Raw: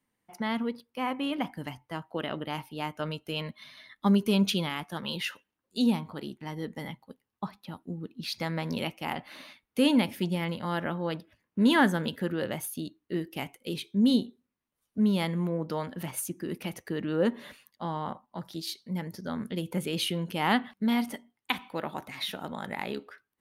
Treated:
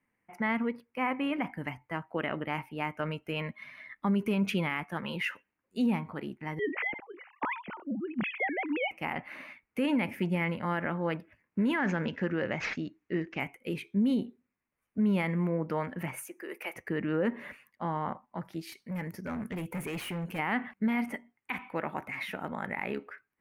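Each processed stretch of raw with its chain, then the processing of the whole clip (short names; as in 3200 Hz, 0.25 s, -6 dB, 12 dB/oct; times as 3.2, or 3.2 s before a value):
6.59–8.91 sine-wave speech + sustainer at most 95 dB/s
11.78–13.4 high shelf 8400 Hz +6.5 dB + careless resampling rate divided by 3×, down none, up filtered
16.27–16.76 HPF 410 Hz 24 dB/oct + high shelf 11000 Hz +11 dB
18.72–20.39 high shelf 5400 Hz +9.5 dB + overloaded stage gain 32.5 dB
whole clip: resonant high shelf 2900 Hz -8.5 dB, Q 3; limiter -20.5 dBFS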